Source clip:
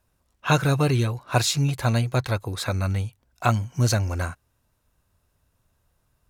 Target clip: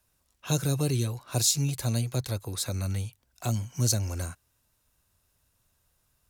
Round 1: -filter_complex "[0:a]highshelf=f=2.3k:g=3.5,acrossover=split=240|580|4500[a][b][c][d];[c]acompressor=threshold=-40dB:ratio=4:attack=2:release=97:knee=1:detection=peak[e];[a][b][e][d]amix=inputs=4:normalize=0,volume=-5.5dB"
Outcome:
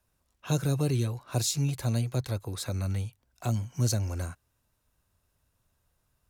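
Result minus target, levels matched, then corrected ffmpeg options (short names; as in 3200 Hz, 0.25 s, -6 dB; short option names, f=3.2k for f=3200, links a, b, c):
4000 Hz band -3.0 dB
-filter_complex "[0:a]highshelf=f=2.3k:g=10.5,acrossover=split=240|580|4500[a][b][c][d];[c]acompressor=threshold=-40dB:ratio=4:attack=2:release=97:knee=1:detection=peak[e];[a][b][e][d]amix=inputs=4:normalize=0,volume=-5.5dB"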